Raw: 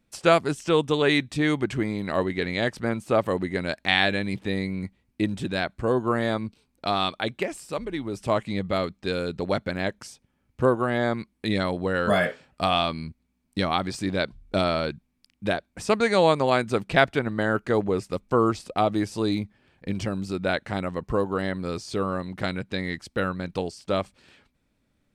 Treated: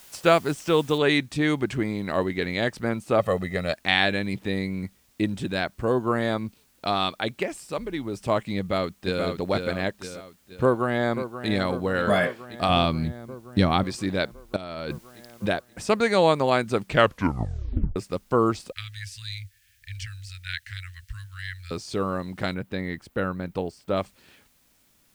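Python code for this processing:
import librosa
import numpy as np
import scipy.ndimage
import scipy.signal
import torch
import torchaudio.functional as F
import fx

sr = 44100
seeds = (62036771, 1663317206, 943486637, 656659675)

y = fx.noise_floor_step(x, sr, seeds[0], at_s=0.98, before_db=-50, after_db=-64, tilt_db=0.0)
y = fx.comb(y, sr, ms=1.6, depth=0.71, at=(3.19, 3.73))
y = fx.echo_throw(y, sr, start_s=8.58, length_s=0.66, ms=480, feedback_pct=45, wet_db=-5.0)
y = fx.echo_throw(y, sr, start_s=10.63, length_s=0.86, ms=530, feedback_pct=70, wet_db=-11.0)
y = fx.low_shelf(y, sr, hz=290.0, db=10.5, at=(12.69, 13.84))
y = fx.over_compress(y, sr, threshold_db=-33.0, ratio=-1.0, at=(14.56, 15.46))
y = fx.cheby1_bandstop(y, sr, low_hz=100.0, high_hz=1700.0, order=4, at=(18.72, 21.71))
y = fx.peak_eq(y, sr, hz=5900.0, db=-9.0, octaves=2.3, at=(22.54, 23.97))
y = fx.edit(y, sr, fx.tape_stop(start_s=16.85, length_s=1.11), tone=tone)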